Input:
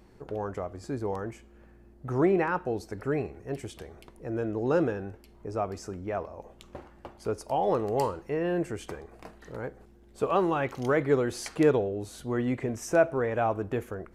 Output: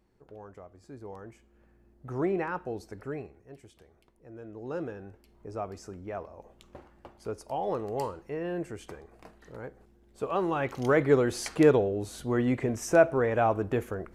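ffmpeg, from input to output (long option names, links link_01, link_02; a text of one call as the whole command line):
ffmpeg -i in.wav -af "volume=11.5dB,afade=type=in:start_time=0.84:duration=1.47:silence=0.375837,afade=type=out:start_time=2.88:duration=0.61:silence=0.334965,afade=type=in:start_time=4.39:duration=1.11:silence=0.334965,afade=type=in:start_time=10.3:duration=0.67:silence=0.446684" out.wav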